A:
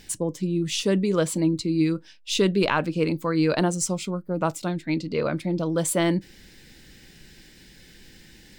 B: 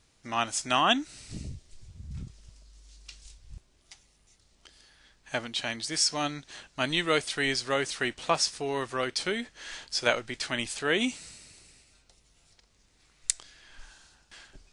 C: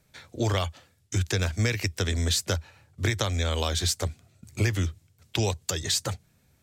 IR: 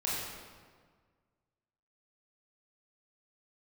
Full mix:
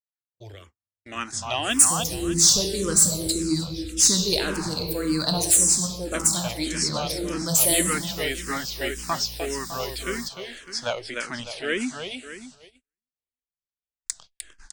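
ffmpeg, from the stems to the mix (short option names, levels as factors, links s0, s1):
-filter_complex "[0:a]aexciter=amount=11.2:drive=4.8:freq=4000,aeval=exprs='val(0)+0.0126*(sin(2*PI*60*n/s)+sin(2*PI*2*60*n/s)/2+sin(2*PI*3*60*n/s)/3+sin(2*PI*4*60*n/s)/4+sin(2*PI*5*60*n/s)/5)':c=same,adelay=1700,volume=0.562,asplit=3[s0][s1][s2];[s1]volume=0.473[s3];[s2]volume=0.1[s4];[1:a]adelay=800,volume=1.19,asplit=2[s5][s6];[s6]volume=0.562[s7];[2:a]volume=0.15,asplit=2[s8][s9];[s9]volume=0.126[s10];[3:a]atrim=start_sample=2205[s11];[s3][s10]amix=inputs=2:normalize=0[s12];[s12][s11]afir=irnorm=-1:irlink=0[s13];[s4][s7]amix=inputs=2:normalize=0,aecho=0:1:303|606|909|1212|1515:1|0.37|0.137|0.0507|0.0187[s14];[s0][s5][s8][s13][s14]amix=inputs=5:normalize=0,asoftclip=type=tanh:threshold=0.422,agate=range=0.00708:threshold=0.00631:ratio=16:detection=peak,asplit=2[s15][s16];[s16]afreqshift=-1.8[s17];[s15][s17]amix=inputs=2:normalize=1"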